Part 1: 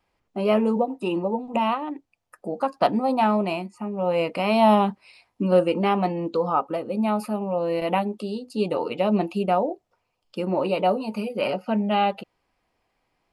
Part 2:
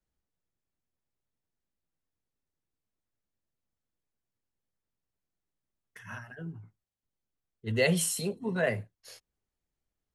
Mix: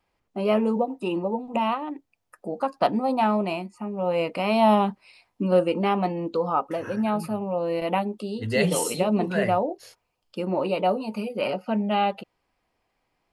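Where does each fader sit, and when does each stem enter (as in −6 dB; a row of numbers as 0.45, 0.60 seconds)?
−1.5, +1.5 decibels; 0.00, 0.75 seconds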